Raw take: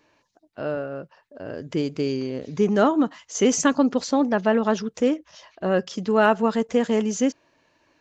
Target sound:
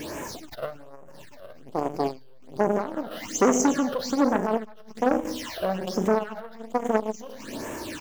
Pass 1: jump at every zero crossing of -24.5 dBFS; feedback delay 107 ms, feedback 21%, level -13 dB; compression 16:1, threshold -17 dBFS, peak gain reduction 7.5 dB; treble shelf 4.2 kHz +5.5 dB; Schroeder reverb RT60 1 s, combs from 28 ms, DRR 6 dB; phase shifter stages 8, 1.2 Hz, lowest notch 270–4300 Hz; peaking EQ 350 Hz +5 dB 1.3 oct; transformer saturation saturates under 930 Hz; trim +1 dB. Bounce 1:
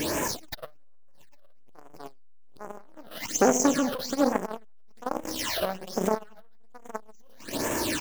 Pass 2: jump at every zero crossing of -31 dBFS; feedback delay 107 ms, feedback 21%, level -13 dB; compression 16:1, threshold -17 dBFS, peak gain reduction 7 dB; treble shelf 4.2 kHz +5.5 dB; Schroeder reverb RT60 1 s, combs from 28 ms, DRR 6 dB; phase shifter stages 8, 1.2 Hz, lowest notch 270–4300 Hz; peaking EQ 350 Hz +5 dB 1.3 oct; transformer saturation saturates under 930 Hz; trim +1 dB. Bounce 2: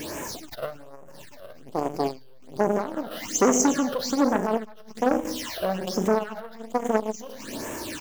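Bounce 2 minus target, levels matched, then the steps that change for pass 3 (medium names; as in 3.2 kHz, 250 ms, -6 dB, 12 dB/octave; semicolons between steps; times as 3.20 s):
8 kHz band +3.5 dB
remove: treble shelf 4.2 kHz +5.5 dB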